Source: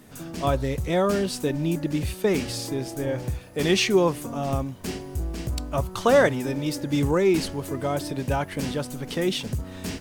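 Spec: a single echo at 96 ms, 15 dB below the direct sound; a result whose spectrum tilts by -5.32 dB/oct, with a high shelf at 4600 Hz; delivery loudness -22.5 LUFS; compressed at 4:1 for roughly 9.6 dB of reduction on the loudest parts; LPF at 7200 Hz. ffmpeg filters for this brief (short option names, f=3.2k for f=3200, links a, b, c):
-af "lowpass=7.2k,highshelf=f=4.6k:g=3,acompressor=threshold=-25dB:ratio=4,aecho=1:1:96:0.178,volume=7.5dB"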